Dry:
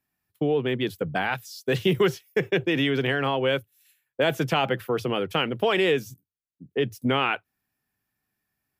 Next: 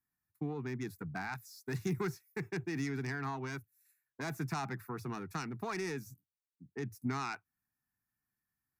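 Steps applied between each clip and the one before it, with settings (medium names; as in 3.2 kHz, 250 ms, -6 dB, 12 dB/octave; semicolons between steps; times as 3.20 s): self-modulated delay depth 0.078 ms; dynamic bell 1.5 kHz, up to -4 dB, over -37 dBFS, Q 1.7; static phaser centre 1.3 kHz, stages 4; trim -8 dB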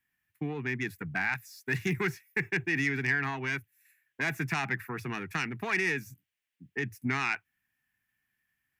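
high-order bell 2.3 kHz +12.5 dB 1.2 oct; trim +3.5 dB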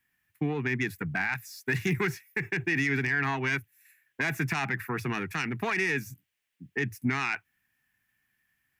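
peak limiter -23.5 dBFS, peak gain reduction 8 dB; trim +5 dB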